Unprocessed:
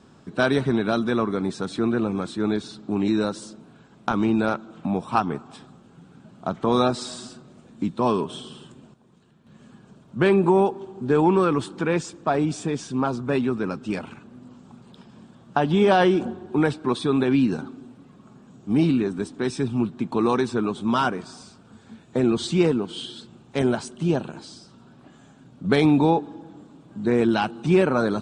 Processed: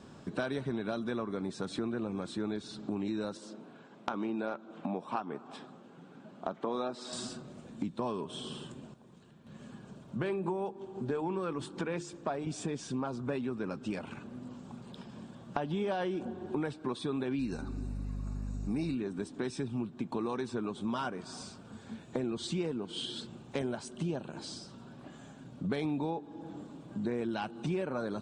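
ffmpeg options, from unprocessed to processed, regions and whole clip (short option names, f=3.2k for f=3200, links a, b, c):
-filter_complex "[0:a]asettb=1/sr,asplit=3[a][b][c];[a]atrim=end=3.374[d];[b]atrim=start=3.37:end=7.13,asetpts=PTS-STARTPTS,afade=t=in:d=0.004:c=qsin,afade=t=out:st=3.756:d=0.004:c=qsin,highpass=240,aemphasis=mode=reproduction:type=50kf[e];[c]atrim=start=7.126[f];[d][e]acrossfade=d=0.004:c1=hsin:c2=qsin[g];[g][f]acrossfade=d=0.004:c1=qsin:c2=hsin,asettb=1/sr,asplit=3[h][i][j];[h]atrim=end=10.174[k];[i]atrim=start=10.17:end=12.47,asetpts=PTS-STARTPTS,afade=t=in:d=0.004:c=qsin,afade=t=out:st=2.296:d=0.004:c=qsin,bandreject=f=50:t=h:w=6,bandreject=f=100:t=h:w=6,bandreject=f=150:t=h:w=6,bandreject=f=200:t=h:w=6,bandreject=f=250:t=h:w=6,bandreject=f=300:t=h:w=6,bandreject=f=350:t=h:w=6,tremolo=f=6.1:d=0.3[l];[j]atrim=start=12.466[m];[k][l]acrossfade=d=0.004:c1=hsin:c2=qsin[n];[n][m]acrossfade=d=0.004:c1=qsin:c2=hsin,asettb=1/sr,asplit=3[o][p][q];[o]atrim=end=17.394[r];[p]atrim=start=17.39:end=18.95,asetpts=PTS-STARTPTS,afade=t=in:d=0.004:c=qsin,afade=t=out:st=1.556:d=0.004:c=qsin,highshelf=f=2.8k:g=9,aeval=exprs='val(0)+0.0224*(sin(2*PI*50*n/s)+sin(2*PI*2*50*n/s)/2+sin(2*PI*3*50*n/s)/3+sin(2*PI*4*50*n/s)/4+sin(2*PI*5*50*n/s)/5)':c=same,asuperstop=centerf=3200:order=8:qfactor=3.7[s];[q]atrim=start=18.946[t];[r][s]acrossfade=d=0.004:c1=hsin:c2=qsin[u];[u][t]acrossfade=d=0.004:c1=qsin:c2=hsin,equalizer=f=570:t=o:w=0.26:g=3.5,bandreject=f=1.3k:w=24,acompressor=threshold=-34dB:ratio=4"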